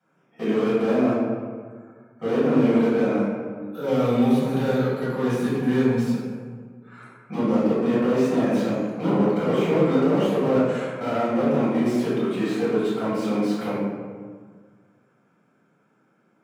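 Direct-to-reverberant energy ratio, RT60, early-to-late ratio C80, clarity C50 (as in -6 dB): -11.0 dB, 1.7 s, 1.0 dB, -1.5 dB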